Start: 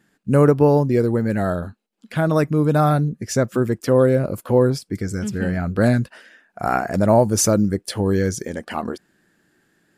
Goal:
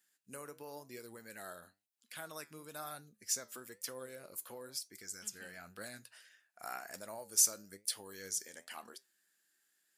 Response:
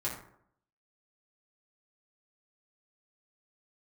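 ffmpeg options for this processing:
-af "acompressor=threshold=0.158:ratio=6,aderivative,flanger=delay=7.4:depth=6.1:regen=78:speed=1:shape=triangular"

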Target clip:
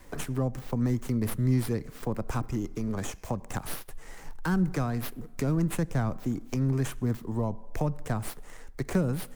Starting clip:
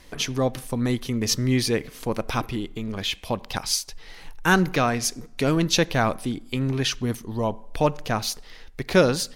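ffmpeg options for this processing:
-filter_complex "[0:a]acrossover=split=210[s0][s1];[s1]acompressor=threshold=0.0282:ratio=6[s2];[s0][s2]amix=inputs=2:normalize=0,acrossover=split=130|490|2100[s3][s4][s5][s6];[s6]aeval=exprs='abs(val(0))':c=same[s7];[s3][s4][s5][s7]amix=inputs=4:normalize=0"

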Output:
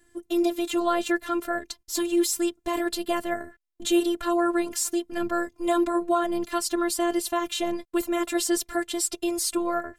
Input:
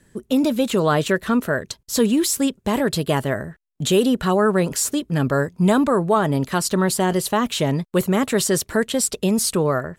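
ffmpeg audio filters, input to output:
-af "afftfilt=real='hypot(re,im)*cos(PI*b)':imag='0':win_size=512:overlap=0.75,aeval=exprs='0.473*(cos(1*acos(clip(val(0)/0.473,-1,1)))-cos(1*PI/2))+0.00473*(cos(5*acos(clip(val(0)/0.473,-1,1)))-cos(5*PI/2))':c=same,volume=0.794"

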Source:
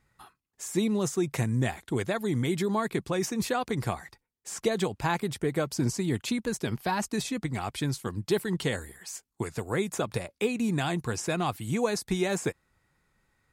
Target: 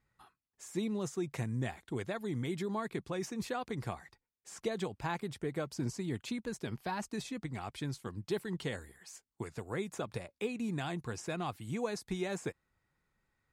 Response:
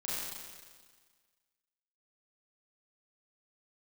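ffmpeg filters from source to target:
-af "highshelf=f=8500:g=-8,volume=0.376"

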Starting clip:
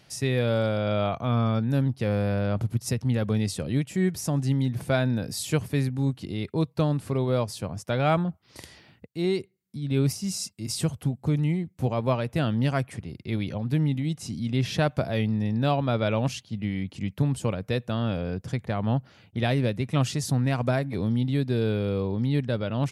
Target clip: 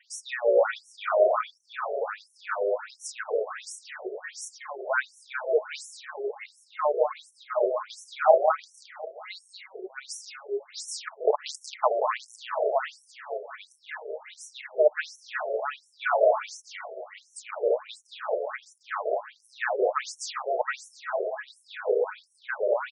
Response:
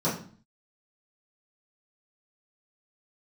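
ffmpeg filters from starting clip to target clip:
-filter_complex "[0:a]adynamicequalizer=threshold=0.01:dfrequency=360:dqfactor=1.9:tfrequency=360:tqfactor=1.9:attack=5:release=100:ratio=0.375:range=2.5:mode=cutabove:tftype=bell,asplit=2[s0][s1];[s1]aecho=0:1:216:0.596[s2];[s0][s2]amix=inputs=2:normalize=0,asplit=3[s3][s4][s5];[s3]afade=t=out:st=11.07:d=0.02[s6];[s4]aeval=exprs='(mod(7.5*val(0)+1,2)-1)/7.5':c=same,afade=t=in:st=11.07:d=0.02,afade=t=out:st=12.06:d=0.02[s7];[s5]afade=t=in:st=12.06:d=0.02[s8];[s6][s7][s8]amix=inputs=3:normalize=0,aphaser=in_gain=1:out_gain=1:delay=4.2:decay=0.32:speed=1.6:type=sinusoidal,highshelf=f=2200:t=q:w=1.5:g=-7,aecho=1:1:4.7:0.32,asplit=2[s9][s10];[s10]aecho=0:1:184|368|552|736|920|1104|1288:0.668|0.354|0.188|0.0995|0.0527|0.0279|0.0148[s11];[s9][s11]amix=inputs=2:normalize=0,afftfilt=real='re*between(b*sr/1024,490*pow(7900/490,0.5+0.5*sin(2*PI*1.4*pts/sr))/1.41,490*pow(7900/490,0.5+0.5*sin(2*PI*1.4*pts/sr))*1.41)':imag='im*between(b*sr/1024,490*pow(7900/490,0.5+0.5*sin(2*PI*1.4*pts/sr))/1.41,490*pow(7900/490,0.5+0.5*sin(2*PI*1.4*pts/sr))*1.41)':win_size=1024:overlap=0.75,volume=2"

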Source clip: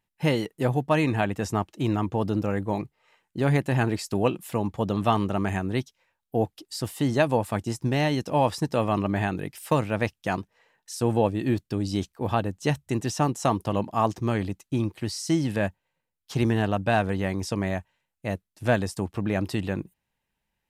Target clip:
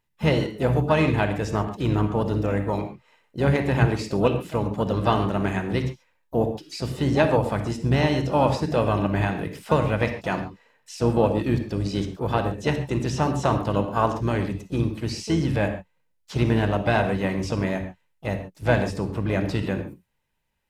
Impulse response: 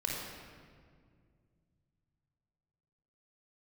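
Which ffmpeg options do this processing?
-filter_complex "[0:a]acrossover=split=6500[s0][s1];[s1]acompressor=threshold=0.00178:ratio=4:attack=1:release=60[s2];[s0][s2]amix=inputs=2:normalize=0,asplit=2[s3][s4];[1:a]atrim=start_sample=2205,atrim=end_sample=6615[s5];[s4][s5]afir=irnorm=-1:irlink=0,volume=0.631[s6];[s3][s6]amix=inputs=2:normalize=0,asplit=3[s7][s8][s9];[s8]asetrate=22050,aresample=44100,atempo=2,volume=0.251[s10];[s9]asetrate=58866,aresample=44100,atempo=0.749154,volume=0.224[s11];[s7][s10][s11]amix=inputs=3:normalize=0,volume=0.75"

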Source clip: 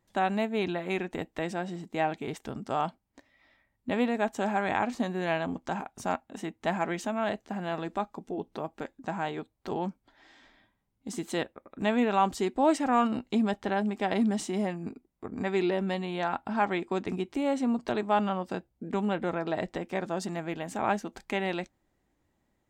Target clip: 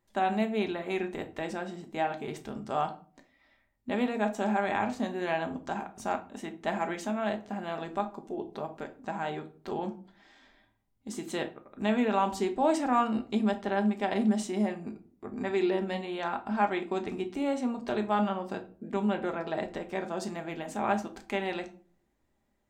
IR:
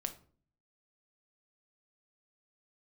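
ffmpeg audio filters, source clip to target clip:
-filter_complex "[0:a]equalizer=f=170:t=o:w=0.36:g=-6[s0];[1:a]atrim=start_sample=2205,asetrate=48510,aresample=44100[s1];[s0][s1]afir=irnorm=-1:irlink=0"

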